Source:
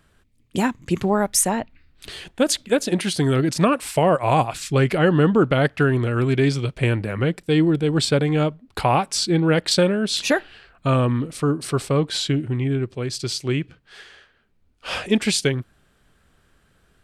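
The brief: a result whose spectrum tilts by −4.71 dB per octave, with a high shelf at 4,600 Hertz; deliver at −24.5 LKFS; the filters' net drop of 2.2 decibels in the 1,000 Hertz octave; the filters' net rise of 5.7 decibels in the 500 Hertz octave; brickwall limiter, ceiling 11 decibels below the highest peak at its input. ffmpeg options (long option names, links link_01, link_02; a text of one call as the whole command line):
ffmpeg -i in.wav -af "equalizer=frequency=500:width_type=o:gain=8.5,equalizer=frequency=1000:width_type=o:gain=-7.5,highshelf=frequency=4600:gain=8,volume=-3dB,alimiter=limit=-15dB:level=0:latency=1" out.wav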